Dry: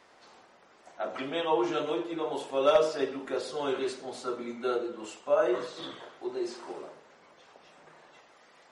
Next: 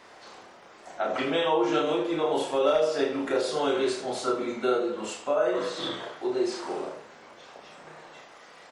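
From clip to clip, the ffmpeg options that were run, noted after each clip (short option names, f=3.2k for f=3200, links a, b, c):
-filter_complex "[0:a]acompressor=threshold=-30dB:ratio=4,asplit=2[a][b];[b]aecho=0:1:32|79:0.668|0.316[c];[a][c]amix=inputs=2:normalize=0,volume=6.5dB"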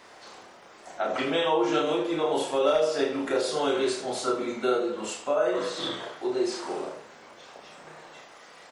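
-af "highshelf=f=5.8k:g=5"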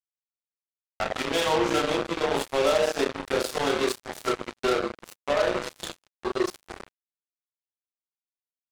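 -af "acrusher=bits=3:mix=0:aa=0.5"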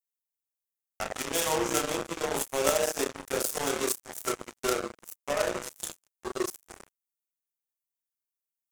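-af "aeval=exprs='0.299*(cos(1*acos(clip(val(0)/0.299,-1,1)))-cos(1*PI/2))+0.075*(cos(3*acos(clip(val(0)/0.299,-1,1)))-cos(3*PI/2))':c=same,aexciter=amount=5:drive=4.6:freq=5.9k,volume=2dB"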